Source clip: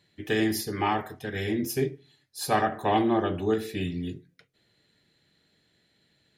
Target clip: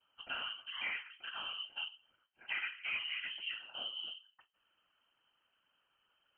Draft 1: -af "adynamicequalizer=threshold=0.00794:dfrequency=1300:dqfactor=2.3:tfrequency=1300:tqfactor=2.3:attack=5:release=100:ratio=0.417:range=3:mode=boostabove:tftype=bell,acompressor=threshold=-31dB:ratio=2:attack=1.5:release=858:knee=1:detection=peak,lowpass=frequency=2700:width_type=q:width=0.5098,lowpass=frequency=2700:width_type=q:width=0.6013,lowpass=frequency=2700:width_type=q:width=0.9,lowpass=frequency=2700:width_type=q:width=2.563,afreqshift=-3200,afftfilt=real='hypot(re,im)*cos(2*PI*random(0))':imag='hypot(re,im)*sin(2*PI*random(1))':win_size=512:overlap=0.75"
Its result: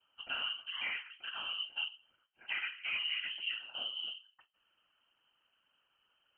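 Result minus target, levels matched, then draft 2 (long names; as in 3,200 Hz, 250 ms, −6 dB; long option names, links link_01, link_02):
250 Hz band −2.5 dB
-af "adynamicequalizer=threshold=0.00794:dfrequency=1300:dqfactor=2.3:tfrequency=1300:tqfactor=2.3:attack=5:release=100:ratio=0.417:range=3:mode=boostabove:tftype=bell,acompressor=threshold=-31dB:ratio=2:attack=1.5:release=858:knee=1:detection=peak,equalizer=frequency=310:width=1.4:gain=-7,lowpass=frequency=2700:width_type=q:width=0.5098,lowpass=frequency=2700:width_type=q:width=0.6013,lowpass=frequency=2700:width_type=q:width=0.9,lowpass=frequency=2700:width_type=q:width=2.563,afreqshift=-3200,afftfilt=real='hypot(re,im)*cos(2*PI*random(0))':imag='hypot(re,im)*sin(2*PI*random(1))':win_size=512:overlap=0.75"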